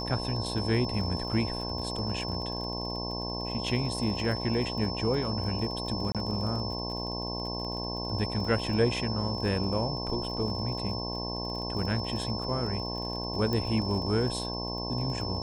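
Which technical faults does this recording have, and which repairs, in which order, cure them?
mains buzz 60 Hz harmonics 18 −36 dBFS
surface crackle 31 per second −37 dBFS
whistle 5,300 Hz −36 dBFS
0:06.12–0:06.15: drop-out 27 ms
0:13.53: click −18 dBFS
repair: click removal
notch filter 5,300 Hz, Q 30
hum removal 60 Hz, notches 18
repair the gap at 0:06.12, 27 ms

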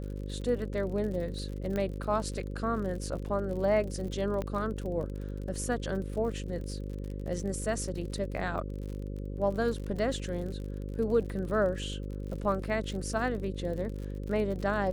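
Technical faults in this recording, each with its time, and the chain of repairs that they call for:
mains buzz 50 Hz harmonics 11 −37 dBFS
surface crackle 50 per second −38 dBFS
0:01.76: click −21 dBFS
0:04.42: click −22 dBFS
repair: click removal
hum removal 50 Hz, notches 11

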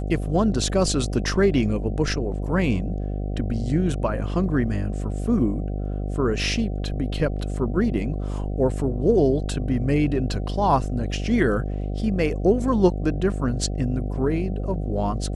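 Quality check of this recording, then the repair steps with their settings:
mains buzz 50 Hz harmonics 15 −27 dBFS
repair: hum removal 50 Hz, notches 15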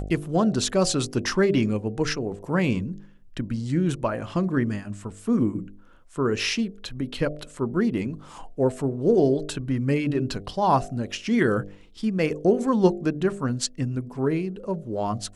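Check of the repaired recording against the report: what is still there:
none of them is left

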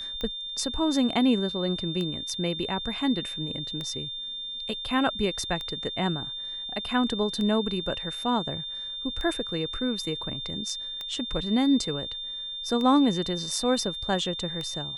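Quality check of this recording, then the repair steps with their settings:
scratch tick 33 1/3 rpm −20 dBFS
whistle 3,600 Hz −33 dBFS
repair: click removal
notch filter 3,600 Hz, Q 30

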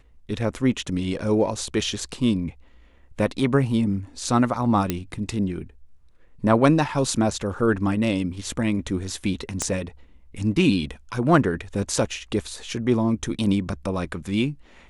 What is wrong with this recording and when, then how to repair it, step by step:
0:04.90: click −8 dBFS
0:09.62: click −10 dBFS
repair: click removal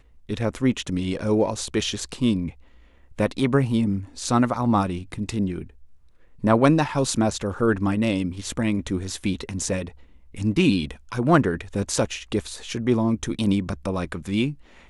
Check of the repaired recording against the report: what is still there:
0:09.62: click

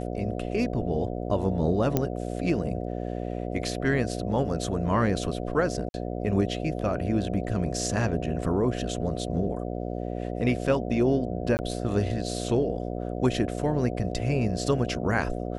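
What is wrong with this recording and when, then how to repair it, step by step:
mains buzz 60 Hz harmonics 12 −32 dBFS
0:01.97: click −10 dBFS
0:05.89–0:05.94: drop-out 51 ms
0:11.57–0:11.59: drop-out 19 ms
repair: click removal
hum removal 60 Hz, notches 12
repair the gap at 0:05.89, 51 ms
repair the gap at 0:11.57, 19 ms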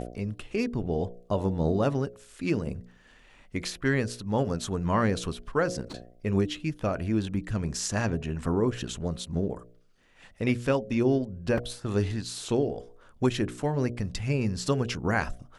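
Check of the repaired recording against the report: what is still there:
0:01.97: click

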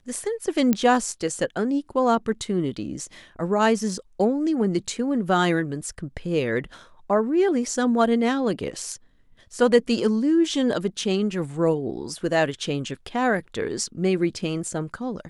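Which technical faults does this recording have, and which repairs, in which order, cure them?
0:00.73: click −8 dBFS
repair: click removal

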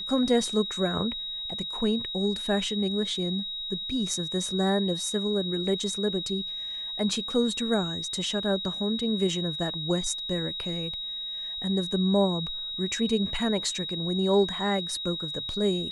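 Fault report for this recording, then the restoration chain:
whistle 3,800 Hz −32 dBFS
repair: notch filter 3,800 Hz, Q 30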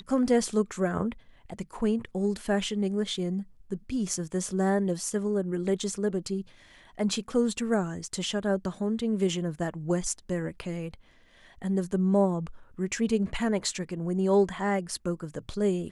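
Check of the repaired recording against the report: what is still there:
none of them is left

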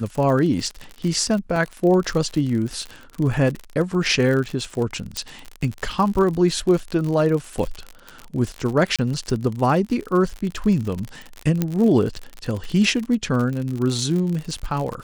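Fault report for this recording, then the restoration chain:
surface crackle 56 per second −25 dBFS
0:01.56: drop-out 2.6 ms
0:05.17: click −10 dBFS
0:08.96–0:08.99: drop-out 26 ms
0:11.62: click −8 dBFS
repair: click removal
repair the gap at 0:01.56, 2.6 ms
repair the gap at 0:08.96, 26 ms

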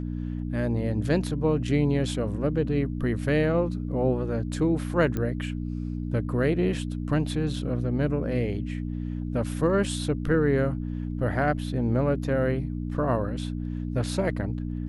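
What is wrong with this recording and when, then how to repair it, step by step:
mains hum 60 Hz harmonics 5 −31 dBFS
0:05.17: click −17 dBFS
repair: click removal
hum removal 60 Hz, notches 5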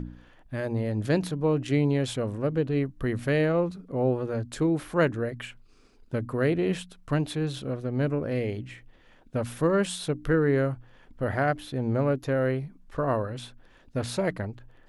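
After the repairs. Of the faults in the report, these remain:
none of them is left

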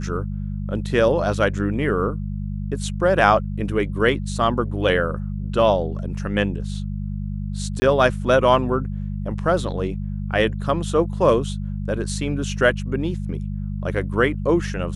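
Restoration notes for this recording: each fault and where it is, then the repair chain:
mains hum 50 Hz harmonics 4 −27 dBFS
0:07.80–0:07.82: drop-out 20 ms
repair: hum removal 50 Hz, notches 4
repair the gap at 0:07.80, 20 ms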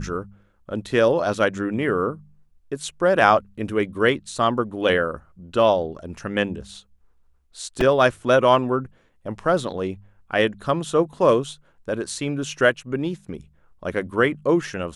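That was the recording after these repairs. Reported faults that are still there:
none of them is left

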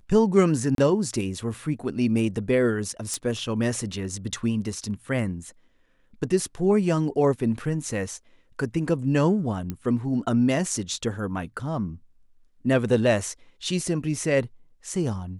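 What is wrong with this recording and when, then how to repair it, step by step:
0:00.75–0:00.78: drop-out 32 ms
0:03.14: click −15 dBFS
0:09.70: click −17 dBFS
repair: click removal
repair the gap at 0:00.75, 32 ms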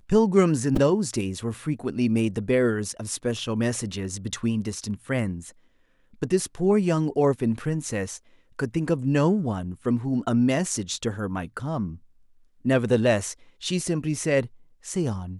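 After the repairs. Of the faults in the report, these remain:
none of them is left

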